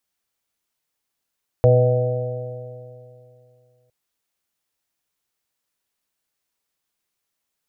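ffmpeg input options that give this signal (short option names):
-f lavfi -i "aevalsrc='0.237*pow(10,-3*t/2.62)*sin(2*PI*122.14*t)+0.0282*pow(10,-3*t/2.62)*sin(2*PI*245.12*t)+0.0299*pow(10,-3*t/2.62)*sin(2*PI*369.77*t)+0.237*pow(10,-3*t/2.62)*sin(2*PI*496.9*t)+0.126*pow(10,-3*t/2.62)*sin(2*PI*627.29*t)+0.0355*pow(10,-3*t/2.62)*sin(2*PI*761.7*t)':d=2.26:s=44100"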